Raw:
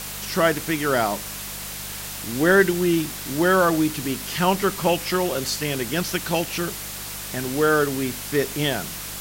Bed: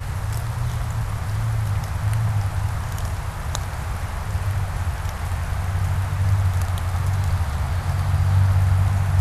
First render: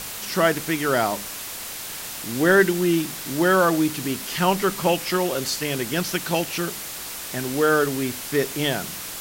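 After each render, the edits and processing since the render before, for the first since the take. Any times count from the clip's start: de-hum 50 Hz, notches 4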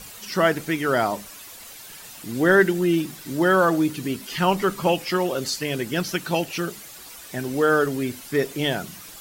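noise reduction 11 dB, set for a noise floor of -34 dBFS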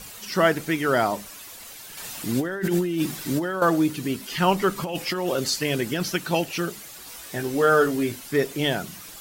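1.97–3.62 s: compressor with a negative ratio -25 dBFS; 4.76–6.09 s: compressor with a negative ratio -25 dBFS; 7.05–8.16 s: doubling 18 ms -5 dB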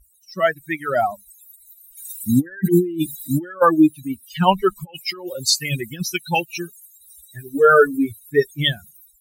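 expander on every frequency bin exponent 3; level rider gain up to 12.5 dB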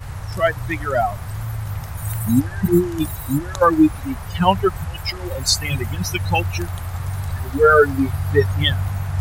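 add bed -4 dB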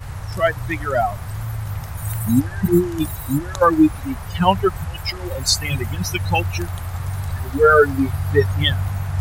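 no audible change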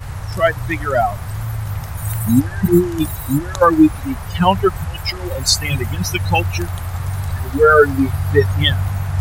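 trim +3 dB; peak limiter -1 dBFS, peak gain reduction 2 dB

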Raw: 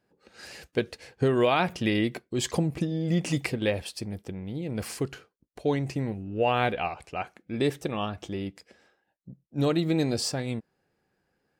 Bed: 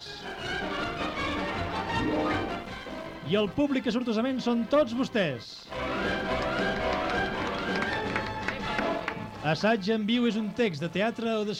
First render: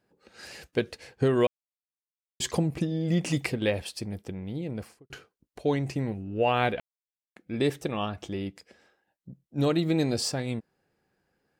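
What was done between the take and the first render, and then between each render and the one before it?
1.47–2.40 s: mute; 4.57–5.10 s: studio fade out; 6.80–7.36 s: mute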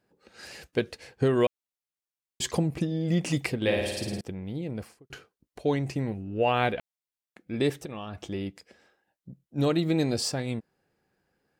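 3.60–4.21 s: flutter echo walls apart 9.3 m, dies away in 1.1 s; 7.73–8.23 s: compression 10:1, threshold -32 dBFS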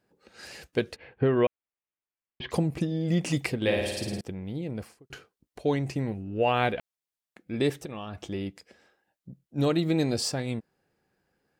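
0.96–2.51 s: inverse Chebyshev low-pass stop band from 7 kHz, stop band 50 dB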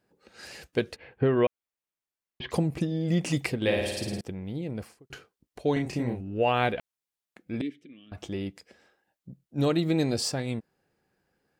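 5.73–6.21 s: doubling 33 ms -3 dB; 7.61–8.12 s: vowel filter i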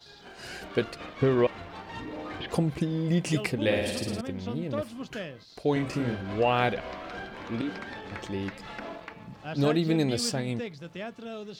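add bed -10.5 dB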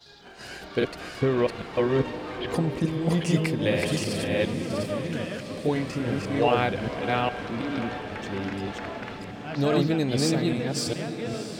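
chunks repeated in reverse 405 ms, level -0.5 dB; on a send: echo that smears into a reverb 662 ms, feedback 64%, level -11.5 dB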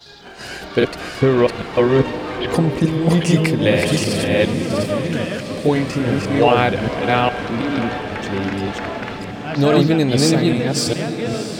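trim +9 dB; peak limiter -2 dBFS, peak gain reduction 2.5 dB

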